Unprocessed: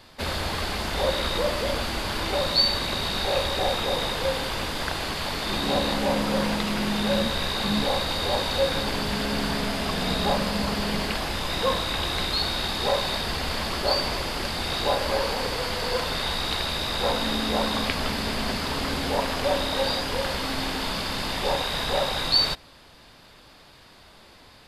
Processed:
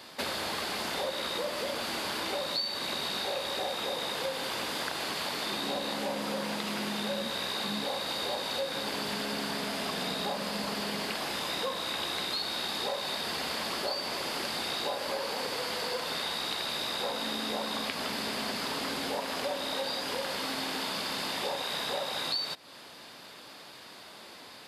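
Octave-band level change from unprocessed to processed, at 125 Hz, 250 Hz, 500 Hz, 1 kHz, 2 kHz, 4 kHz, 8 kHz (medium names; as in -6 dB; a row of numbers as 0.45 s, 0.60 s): -15.0 dB, -9.0 dB, -8.0 dB, -7.0 dB, -6.0 dB, -6.0 dB, -4.0 dB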